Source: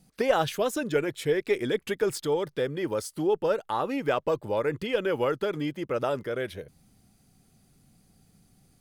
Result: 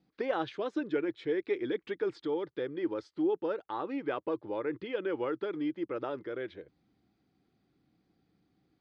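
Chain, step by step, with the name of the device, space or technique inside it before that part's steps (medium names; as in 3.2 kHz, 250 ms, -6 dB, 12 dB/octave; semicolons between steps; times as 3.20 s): 4.02–5.18 s: low-pass 5.9 kHz 12 dB/octave; guitar cabinet (cabinet simulation 90–3900 Hz, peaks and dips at 98 Hz -8 dB, 150 Hz -7 dB, 220 Hz -5 dB, 320 Hz +10 dB, 630 Hz -4 dB, 2.8 kHz -5 dB); trim -7.5 dB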